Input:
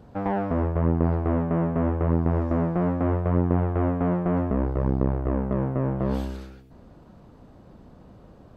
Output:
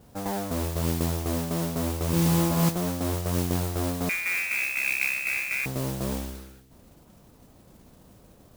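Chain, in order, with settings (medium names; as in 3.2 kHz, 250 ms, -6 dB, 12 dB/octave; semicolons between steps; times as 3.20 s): 2.10–2.69 s: flutter echo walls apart 5.1 m, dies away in 1 s; 4.09–5.66 s: frequency inversion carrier 2.6 kHz; modulation noise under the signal 10 dB; trim -5 dB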